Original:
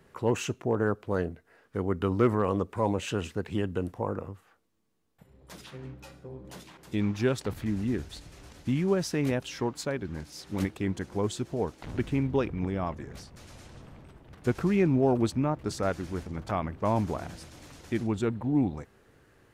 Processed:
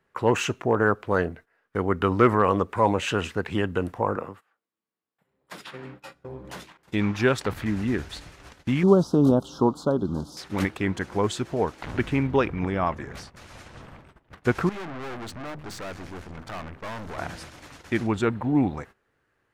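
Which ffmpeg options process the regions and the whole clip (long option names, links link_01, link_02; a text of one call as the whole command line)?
ffmpeg -i in.wav -filter_complex "[0:a]asettb=1/sr,asplit=3[link_01][link_02][link_03];[link_01]atrim=end=4.164[link_04];[link_02]atrim=start=4.16:end=6.15,asetpts=PTS-STARTPTS,afade=type=in:duration=0.004:curve=qsin,afade=type=out:start_time=1.986:duration=0.004:curve=qsin,highpass=160,bandreject=frequency=6100:width=11[link_05];[link_03]atrim=start=6.146[link_06];[link_04][link_05]acrossfade=duration=0.004:curve1=hsin:curve2=qsin[link_07];[link_07][link_06]acrossfade=duration=0.004:curve1=qsin:curve2=hsin,asettb=1/sr,asplit=3[link_08][link_09][link_10];[link_08]atrim=end=8.834[link_11];[link_09]atrim=start=8.83:end=10.37,asetpts=PTS-STARTPTS,afade=type=in:duration=0.004:curve=qsin,afade=type=out:start_time=1.536:duration=0.004:curve=qsin,acrossover=split=2500[link_12][link_13];[link_13]acompressor=threshold=-47dB:ratio=4:attack=1:release=60[link_14];[link_12][link_14]amix=inputs=2:normalize=0,asuperstop=centerf=2100:order=8:qfactor=1,equalizer=frequency=230:width_type=o:width=1.6:gain=7.5[link_15];[link_10]atrim=start=10.366[link_16];[link_11][link_15]acrossfade=duration=0.004:curve1=hsin:curve2=qsin[link_17];[link_17][link_16]acrossfade=duration=0.004:curve1=qsin:curve2=hsin,asettb=1/sr,asplit=3[link_18][link_19][link_20];[link_18]atrim=end=14.694[link_21];[link_19]atrim=start=14.69:end=17.18,asetpts=PTS-STARTPTS,afade=type=in:duration=0.004:curve=qsin,afade=type=out:start_time=2.486:duration=0.004:curve=qsin,bandreject=frequency=50:width_type=h:width=6,bandreject=frequency=100:width_type=h:width=6,bandreject=frequency=150:width_type=h:width=6,bandreject=frequency=200:width_type=h:width=6,bandreject=frequency=250:width_type=h:width=6,aeval=exprs='(tanh(100*val(0)+0.75)-tanh(0.75))/100':channel_layout=same[link_22];[link_20]atrim=start=17.176[link_23];[link_21][link_22]acrossfade=duration=0.004:curve1=hsin:curve2=qsin[link_24];[link_24][link_23]acrossfade=duration=0.004:curve1=qsin:curve2=hsin,agate=range=-18dB:threshold=-48dB:ratio=16:detection=peak,equalizer=frequency=1500:width_type=o:width=2.5:gain=8.5,volume=2.5dB" out.wav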